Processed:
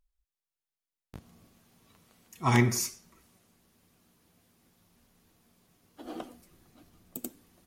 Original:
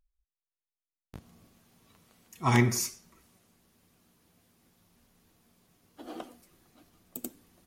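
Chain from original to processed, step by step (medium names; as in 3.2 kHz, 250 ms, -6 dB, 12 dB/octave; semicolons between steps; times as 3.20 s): 6.05–7.18 s: bass shelf 230 Hz +6 dB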